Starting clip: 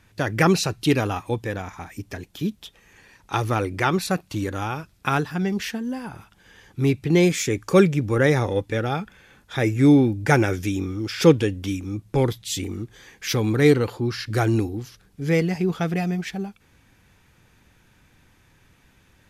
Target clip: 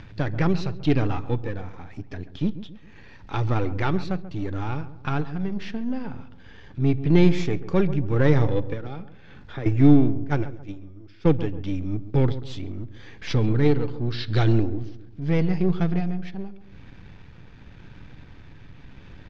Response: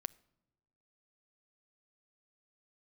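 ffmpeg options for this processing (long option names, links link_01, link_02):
-filter_complex "[0:a]aeval=exprs='if(lt(val(0),0),0.447*val(0),val(0))':channel_layout=same,tremolo=f=0.83:d=0.5,acompressor=mode=upward:threshold=-36dB:ratio=2.5,asettb=1/sr,asplit=3[link_01][link_02][link_03];[link_01]atrim=end=10.244[link_04];[link_02]atrim=start=10.24:end=11.28,asetpts=PTS-STARTPTS,afade=type=in:duration=0.004:curve=qsin,afade=type=out:start_time=1.036:duration=0.004:curve=qsin,agate=range=-19dB:threshold=-24dB:ratio=16:detection=peak[link_05];[link_03]atrim=start=11.276[link_06];[link_04][link_05]acrossfade=duration=0.004:curve1=hsin:curve2=qsin[link_07];[link_07][link_06]acrossfade=duration=0.004:curve1=qsin:curve2=hsin,asettb=1/sr,asplit=3[link_08][link_09][link_10];[link_08]atrim=end=14.124[link_11];[link_09]atrim=start=14.12:end=14.53,asetpts=PTS-STARTPTS,afade=type=in:duration=0.004:curve=qsin,afade=type=out:start_time=0.406:duration=0.004:curve=qsin,equalizer=frequency=3700:width_type=o:width=0.59:gain=13.5[link_12];[link_10]atrim=start=14.526[link_13];[link_11][link_12]acrossfade=duration=0.004:curve1=hsin:curve2=qsin[link_14];[link_14][link_13]acrossfade=duration=0.004:curve1=qsin:curve2=hsin[link_15];[1:a]atrim=start_sample=2205,atrim=end_sample=3969[link_16];[link_15][link_16]afir=irnorm=-1:irlink=0,asettb=1/sr,asplit=3[link_17][link_18][link_19];[link_17]atrim=end=8.734[link_20];[link_18]atrim=start=8.73:end=9.66,asetpts=PTS-STARTPTS,afade=type=in:duration=0.004:curve=qsin,afade=type=out:start_time=0.926:duration=0.004:curve=qsin,acrossover=split=160|2300[link_21][link_22][link_23];[link_21]acompressor=threshold=-45dB:ratio=4[link_24];[link_22]acompressor=threshold=-38dB:ratio=4[link_25];[link_23]acompressor=threshold=-53dB:ratio=4[link_26];[link_24][link_25][link_26]amix=inputs=3:normalize=0[link_27];[link_19]atrim=start=9.656[link_28];[link_20][link_27]acrossfade=duration=0.004:curve1=hsin:curve2=qsin[link_29];[link_29][link_28]acrossfade=duration=0.004:curve1=qsin:curve2=hsin,lowpass=frequency=4700:width=0.5412,lowpass=frequency=4700:width=1.3066,lowshelf=frequency=400:gain=8.5,asplit=2[link_30][link_31];[link_31]adelay=136,lowpass=frequency=1100:poles=1,volume=-13dB,asplit=2[link_32][link_33];[link_33]adelay=136,lowpass=frequency=1100:poles=1,volume=0.43,asplit=2[link_34][link_35];[link_35]adelay=136,lowpass=frequency=1100:poles=1,volume=0.43,asplit=2[link_36][link_37];[link_37]adelay=136,lowpass=frequency=1100:poles=1,volume=0.43[link_38];[link_30][link_32][link_34][link_36][link_38]amix=inputs=5:normalize=0"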